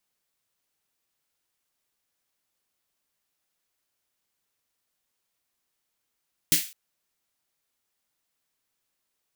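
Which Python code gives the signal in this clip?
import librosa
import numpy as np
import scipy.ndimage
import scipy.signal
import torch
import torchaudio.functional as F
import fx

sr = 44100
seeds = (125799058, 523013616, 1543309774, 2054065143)

y = fx.drum_snare(sr, seeds[0], length_s=0.21, hz=170.0, second_hz=310.0, noise_db=9.5, noise_from_hz=2000.0, decay_s=0.16, noise_decay_s=0.36)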